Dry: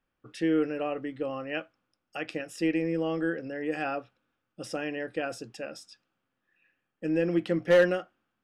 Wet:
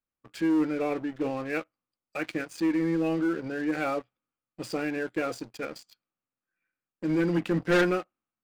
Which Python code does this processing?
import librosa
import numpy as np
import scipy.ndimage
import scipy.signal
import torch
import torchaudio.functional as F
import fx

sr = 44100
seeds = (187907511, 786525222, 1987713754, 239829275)

y = fx.formant_shift(x, sr, semitones=-2)
y = fx.leveller(y, sr, passes=3)
y = y * librosa.db_to_amplitude(-8.0)